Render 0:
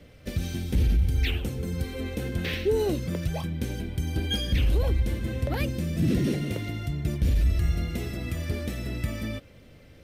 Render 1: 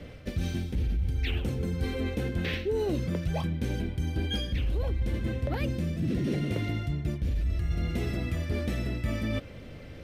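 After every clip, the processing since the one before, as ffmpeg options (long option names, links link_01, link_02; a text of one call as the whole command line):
ffmpeg -i in.wav -af "areverse,acompressor=threshold=-34dB:ratio=6,areverse,highshelf=frequency=6200:gain=-10.5,volume=7.5dB" out.wav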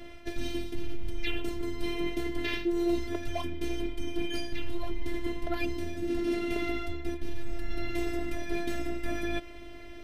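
ffmpeg -i in.wav -af "afftfilt=real='hypot(re,im)*cos(PI*b)':imag='0':win_size=512:overlap=0.75,volume=4.5dB" out.wav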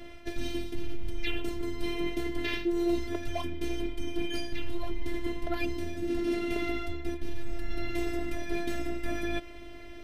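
ffmpeg -i in.wav -af anull out.wav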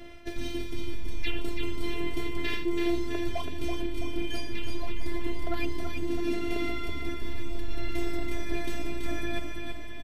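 ffmpeg -i in.wav -af "aecho=1:1:330|660|990|1320|1650|1980|2310:0.562|0.309|0.17|0.0936|0.0515|0.0283|0.0156" out.wav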